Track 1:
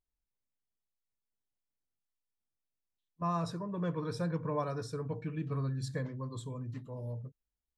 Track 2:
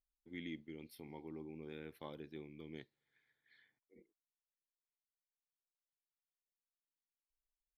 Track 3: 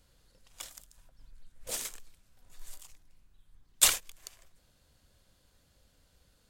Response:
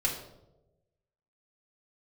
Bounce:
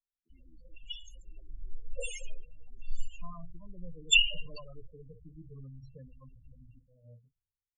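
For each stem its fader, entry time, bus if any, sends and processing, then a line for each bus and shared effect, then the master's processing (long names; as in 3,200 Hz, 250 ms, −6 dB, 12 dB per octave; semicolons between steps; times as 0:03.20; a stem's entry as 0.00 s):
−13.0 dB, 0.00 s, no send, noise gate −39 dBFS, range −9 dB
−18.0 dB, 0.00 s, send −21 dB, no processing
+1.5 dB, 0.30 s, send −5 dB, notch filter 7,900 Hz, Q 15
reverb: on, RT60 1.0 s, pre-delay 3 ms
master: parametric band 2,800 Hz +10.5 dB 0.34 octaves; spectral peaks only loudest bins 8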